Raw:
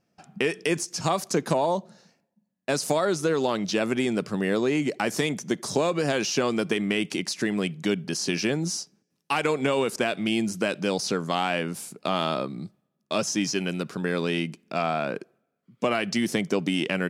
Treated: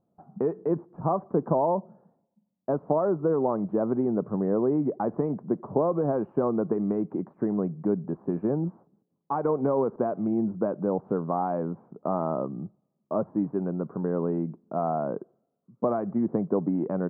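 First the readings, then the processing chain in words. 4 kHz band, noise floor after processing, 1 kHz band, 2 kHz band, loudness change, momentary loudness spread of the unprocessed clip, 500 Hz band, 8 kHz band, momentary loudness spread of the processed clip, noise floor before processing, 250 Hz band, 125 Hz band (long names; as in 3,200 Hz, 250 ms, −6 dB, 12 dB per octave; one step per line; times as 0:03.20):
below −40 dB, −78 dBFS, −1.5 dB, −22.0 dB, −1.5 dB, 6 LU, 0.0 dB, below −40 dB, 7 LU, −78 dBFS, 0.0 dB, 0.0 dB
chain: Butterworth low-pass 1,100 Hz 36 dB per octave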